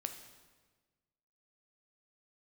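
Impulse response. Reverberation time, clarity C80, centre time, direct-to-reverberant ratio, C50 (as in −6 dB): 1.4 s, 10.5 dB, 19 ms, 6.0 dB, 8.5 dB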